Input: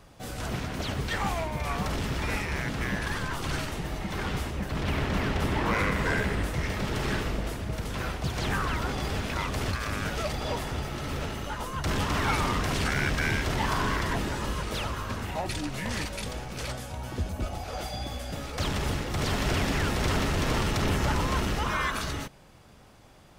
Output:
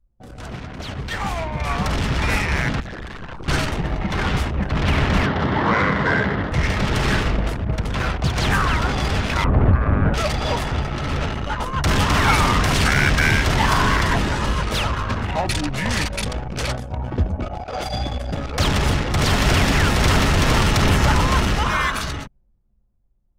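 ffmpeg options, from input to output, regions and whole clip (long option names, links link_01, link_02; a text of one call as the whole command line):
ffmpeg -i in.wav -filter_complex "[0:a]asettb=1/sr,asplit=3[link_01][link_02][link_03];[link_01]atrim=end=2.804[link_04];[link_02]atrim=start=2.8:end=3.48,asetpts=PTS-STARTPTS,afade=type=in:duration=0.004:curve=qsin,afade=type=out:start_time=0.676:duration=0.004:curve=qsin,highshelf=frequency=2600:gain=-3,tremolo=f=130:d=0.621,aeval=exprs='0.02*(abs(mod(val(0)/0.02+3,4)-2)-1)':channel_layout=same[link_05];[link_03]atrim=start=3.476[link_06];[link_04][link_05]acrossfade=duration=0.004:curve1=hsin:curve2=qsin[link_07];[link_07][link_06]acrossfade=duration=0.004:curve1=qsin:curve2=hsin,asettb=1/sr,asplit=3[link_08][link_09][link_10];[link_08]atrim=end=5.264[link_11];[link_09]atrim=start=5.26:end=6.52,asetpts=PTS-STARTPTS,afade=type=in:duration=0.004:curve=qsin,afade=type=out:start_time=1.256:duration=0.004:curve=qsin,highpass=110,lowpass=3800,equalizer=frequency=2500:width_type=o:width=0.37:gain=-9.5[link_12];[link_10]atrim=start=6.516[link_13];[link_11][link_12]acrossfade=duration=0.004:curve1=hsin:curve2=qsin[link_14];[link_14][link_13]acrossfade=duration=0.004:curve1=qsin:curve2=hsin,asettb=1/sr,asplit=3[link_15][link_16][link_17];[link_15]atrim=end=9.444[link_18];[link_16]atrim=start=9.44:end=10.14,asetpts=PTS-STARTPTS,afade=type=in:duration=0.004:curve=qsin,afade=type=out:start_time=0.696:duration=0.004:curve=qsin,lowpass=1700,tiltshelf=frequency=1100:gain=6.5[link_19];[link_17]atrim=start=10.136[link_20];[link_18][link_19]acrossfade=duration=0.004:curve1=hsin:curve2=qsin[link_21];[link_21][link_20]acrossfade=duration=0.004:curve1=qsin:curve2=hsin,asettb=1/sr,asplit=3[link_22][link_23][link_24];[link_22]atrim=end=17.394[link_25];[link_23]atrim=start=17.39:end=17.87,asetpts=PTS-STARTPTS,afade=type=in:duration=0.004:curve=qsin,afade=type=out:start_time=0.476:duration=0.004:curve=qsin,lowshelf=frequency=120:gain=-8.5,bandreject=frequency=51.66:width_type=h:width=4,bandreject=frequency=103.32:width_type=h:width=4,bandreject=frequency=154.98:width_type=h:width=4,bandreject=frequency=206.64:width_type=h:width=4,bandreject=frequency=258.3:width_type=h:width=4,bandreject=frequency=309.96:width_type=h:width=4,bandreject=frequency=361.62:width_type=h:width=4,bandreject=frequency=413.28:width_type=h:width=4,bandreject=frequency=464.94:width_type=h:width=4,bandreject=frequency=516.6:width_type=h:width=4,bandreject=frequency=568.26:width_type=h:width=4,bandreject=frequency=619.92:width_type=h:width=4,bandreject=frequency=671.58:width_type=h:width=4,bandreject=frequency=723.24:width_type=h:width=4,bandreject=frequency=774.9:width_type=h:width=4,bandreject=frequency=826.56:width_type=h:width=4,bandreject=frequency=878.22:width_type=h:width=4,bandreject=frequency=929.88:width_type=h:width=4,bandreject=frequency=981.54:width_type=h:width=4,bandreject=frequency=1033.2:width_type=h:width=4,bandreject=frequency=1084.86:width_type=h:width=4,bandreject=frequency=1136.52:width_type=h:width=4,bandreject=frequency=1188.18:width_type=h:width=4,bandreject=frequency=1239.84:width_type=h:width=4,bandreject=frequency=1291.5:width_type=h:width=4,bandreject=frequency=1343.16:width_type=h:width=4,bandreject=frequency=1394.82:width_type=h:width=4,bandreject=frequency=1446.48:width_type=h:width=4,bandreject=frequency=1498.14:width_type=h:width=4,bandreject=frequency=1549.8:width_type=h:width=4,bandreject=frequency=1601.46:width_type=h:width=4,bandreject=frequency=1653.12:width_type=h:width=4,bandreject=frequency=1704.78:width_type=h:width=4,bandreject=frequency=1756.44:width_type=h:width=4,bandreject=frequency=1808.1:width_type=h:width=4,bandreject=frequency=1859.76:width_type=h:width=4,bandreject=frequency=1911.42:width_type=h:width=4,bandreject=frequency=1963.08:width_type=h:width=4,bandreject=frequency=2014.74:width_type=h:width=4[link_26];[link_24]atrim=start=17.866[link_27];[link_25][link_26]acrossfade=duration=0.004:curve1=hsin:curve2=qsin[link_28];[link_28][link_27]acrossfade=duration=0.004:curve1=qsin:curve2=hsin,anlmdn=2.51,adynamicequalizer=threshold=0.00794:dfrequency=380:dqfactor=0.88:tfrequency=380:tqfactor=0.88:attack=5:release=100:ratio=0.375:range=2:mode=cutabove:tftype=bell,dynaudnorm=framelen=180:gausssize=17:maxgain=11dB" out.wav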